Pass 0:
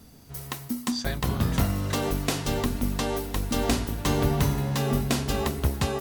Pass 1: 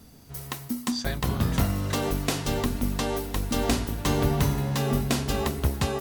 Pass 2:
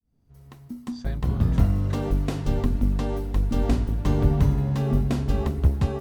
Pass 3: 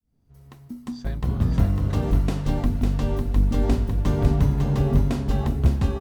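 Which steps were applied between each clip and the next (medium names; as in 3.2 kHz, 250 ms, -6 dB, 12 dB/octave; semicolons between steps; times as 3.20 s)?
no audible change
fade-in on the opening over 1.57 s; tilt EQ -3 dB/octave; trim -5 dB
delay 551 ms -4.5 dB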